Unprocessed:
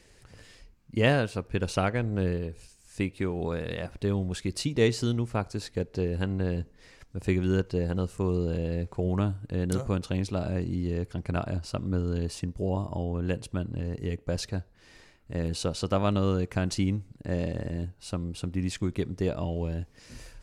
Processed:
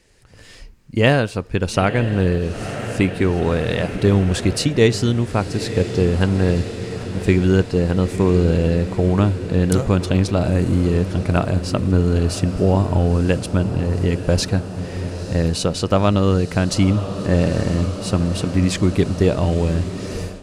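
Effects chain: on a send: diffused feedback echo 0.945 s, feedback 75%, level -13 dB; on the sum: AGC gain up to 14 dB

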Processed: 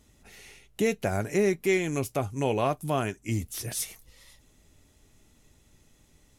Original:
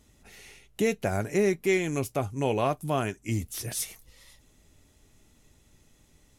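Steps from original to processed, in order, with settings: 0.86–3.08 mismatched tape noise reduction encoder only

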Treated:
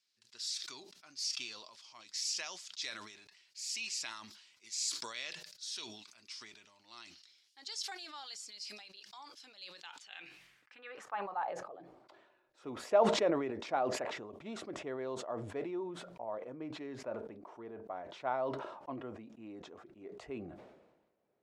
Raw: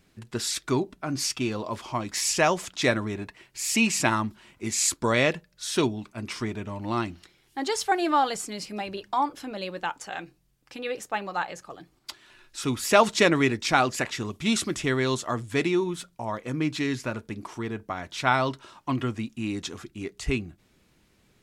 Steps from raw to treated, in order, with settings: band-pass sweep 4900 Hz -> 600 Hz, 9.71–11.68; sustainer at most 51 dB/s; gain -6 dB

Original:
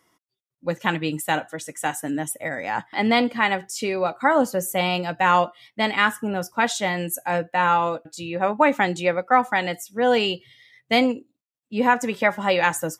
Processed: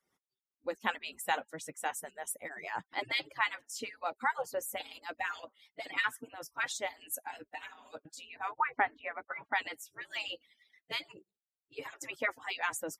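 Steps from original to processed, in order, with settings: median-filter separation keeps percussive; 8.52–9.53 LPF 2200 Hz 24 dB/oct; noise-modulated level, depth 50%; gain -7 dB

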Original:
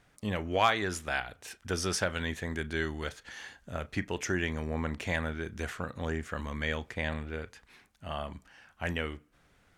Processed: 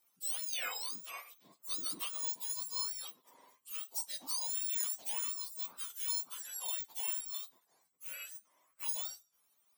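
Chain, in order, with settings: spectrum mirrored in octaves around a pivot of 1300 Hz; differentiator; gain +1.5 dB

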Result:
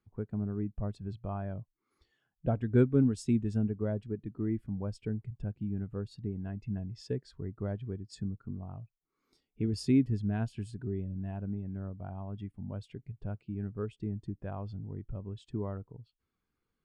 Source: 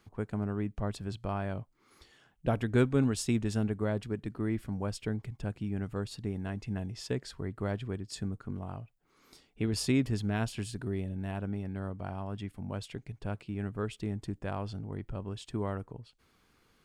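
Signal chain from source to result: in parallel at -0.5 dB: compressor, threshold -40 dBFS, peak gain reduction 18.5 dB; on the sum: spectral expander 1.5:1; gain -1.5 dB

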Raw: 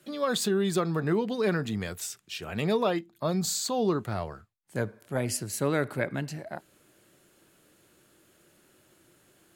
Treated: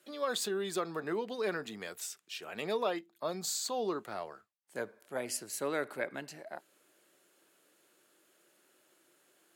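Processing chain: HPF 360 Hz 12 dB/oct; gain -5 dB

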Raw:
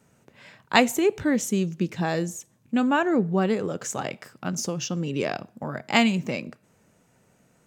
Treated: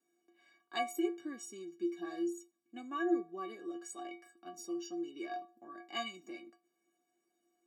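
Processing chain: ladder high-pass 220 Hz, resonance 40%; metallic resonator 340 Hz, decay 0.32 s, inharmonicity 0.03; gain +6 dB

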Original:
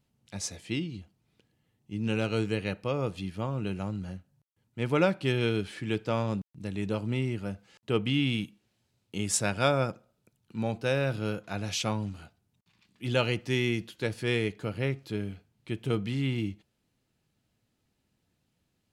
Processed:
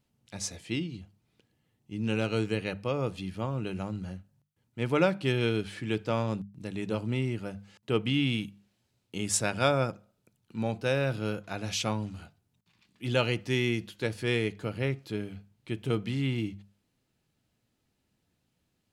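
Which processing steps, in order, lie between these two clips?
notches 50/100/150/200 Hz

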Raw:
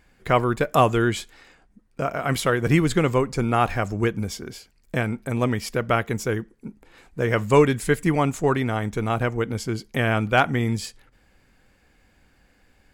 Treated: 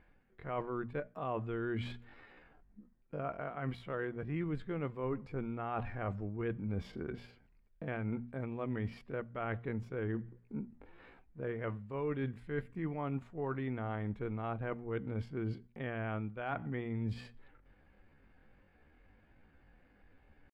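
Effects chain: notches 60/120/180/240 Hz; reverse; compressor 10:1, threshold -30 dBFS, peak gain reduction 19.5 dB; reverse; tempo 0.63×; air absorption 470 m; gain -3 dB

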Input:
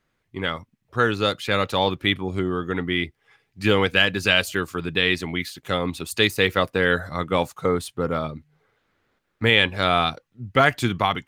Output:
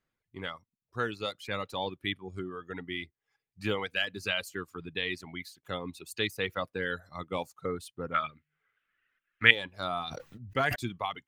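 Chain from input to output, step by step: 8.14–9.51 band shelf 2000 Hz +15.5 dB; reverb removal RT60 1.6 s; 10.07–10.76 sustainer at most 21 dB/s; gain -11.5 dB

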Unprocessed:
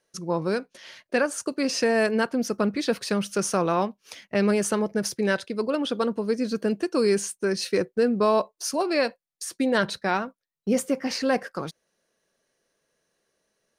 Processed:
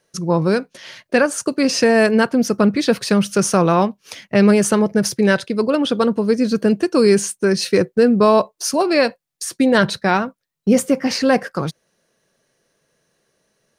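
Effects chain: bell 130 Hz +7.5 dB 1.1 oct; gain +7.5 dB

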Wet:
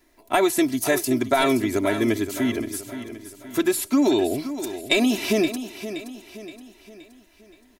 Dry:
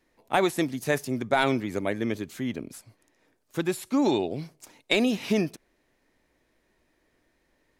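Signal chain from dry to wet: high shelf 8200 Hz +9.5 dB; comb 3 ms, depth 82%; in parallel at -2 dB: limiter -17 dBFS, peak gain reduction 9 dB; on the sum: compressor, threshold -15 dBFS, peak gain reduction 3.5 dB; on a send: feedback echo 0.522 s, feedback 46%, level -11.5 dB

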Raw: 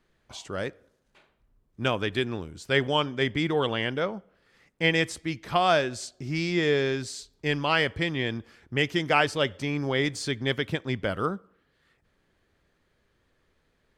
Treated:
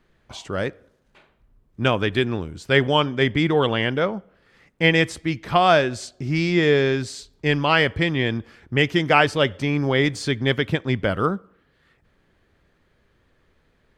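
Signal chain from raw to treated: tone controls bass +2 dB, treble -5 dB; gain +6 dB

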